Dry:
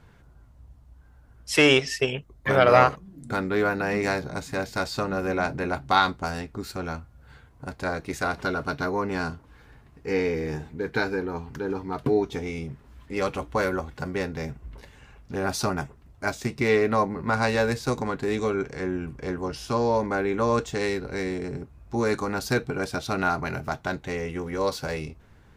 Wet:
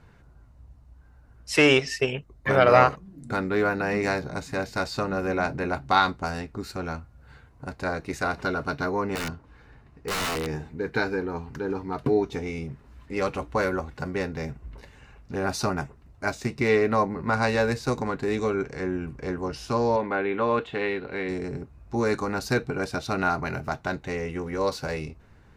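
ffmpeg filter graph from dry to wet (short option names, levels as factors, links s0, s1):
-filter_complex "[0:a]asettb=1/sr,asplit=3[s0][s1][s2];[s0]atrim=end=9.154[s3];[s1]atrim=start=9.15:end=10.47,asetpts=PTS-STARTPTS,afade=t=in:d=0.004:c=qsin,afade=t=out:st=1.316:d=0.004:c=qsin,highshelf=f=8700:g=-9.5,aeval=exprs='(mod(14.1*val(0)+1,2)-1)/14.1':c=same[s4];[s2]atrim=start=10.466[s5];[s3][s4]acrossfade=d=0.004:c1=hsin:c2=qsin[s6];[s6][s5]acrossfade=d=0.004:c1=qsin:c2=hsin,asettb=1/sr,asplit=3[s7][s8][s9];[s7]atrim=end=19.964[s10];[s8]atrim=start=19.96:end=21.29,asetpts=PTS-STARTPTS,afade=t=in:d=0.004:c=qsin,afade=t=out:st=1.326:d=0.004:c=qsin,highshelf=f=4400:t=q:w=3:g=-10,acrossover=split=3200[s11][s12];[s12]acompressor=threshold=0.00501:ratio=4:attack=1:release=60[s13];[s11][s13]amix=inputs=2:normalize=0,highpass=f=230:p=1[s14];[s9]atrim=start=21.286[s15];[s10][s14]acrossfade=d=0.004:c1=hsin:c2=qsin[s16];[s16][s15]acrossfade=d=0.004:c1=qsin:c2=hsin,highshelf=f=9800:g=-7.5,bandreject=f=3300:w=12"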